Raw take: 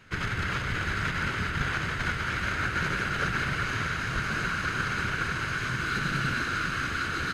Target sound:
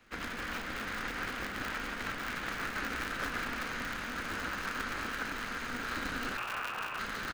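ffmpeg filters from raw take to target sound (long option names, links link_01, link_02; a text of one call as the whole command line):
ffmpeg -i in.wav -filter_complex "[0:a]highpass=frequency=52:width=0.5412,highpass=frequency=52:width=1.3066,acrossover=split=110[link_01][link_02];[link_01]aeval=exprs='0.0106*(abs(mod(val(0)/0.0106+3,4)-2)-1)':channel_layout=same[link_03];[link_02]aecho=1:1:32.07|169.1:0.282|0.316[link_04];[link_03][link_04]amix=inputs=2:normalize=0,asettb=1/sr,asplit=3[link_05][link_06][link_07];[link_05]atrim=end=6.374[link_08];[link_06]atrim=start=6.37:end=6.99,asetpts=PTS-STARTPTS,afade=type=in:duration=0.004:curve=qsin,afade=type=out:start_time=0.616:duration=0.004:curve=qsin,lowpass=frequency=2400:width_type=q:width=0.5098,lowpass=frequency=2400:width_type=q:width=0.6013,lowpass=frequency=2400:width_type=q:width=0.9,lowpass=frequency=2400:width_type=q:width=2.563,afreqshift=-2800[link_09];[link_07]atrim=start=6.986[link_10];[link_08][link_09]acrossfade=duration=0.004:curve1=hsin:curve2=qsin[link_11];[link_11][link_10]acrossfade=duration=0.004:curve1=qsin:curve2=hsin,aeval=exprs='val(0)*sgn(sin(2*PI*120*n/s))':channel_layout=same,volume=-8dB" out.wav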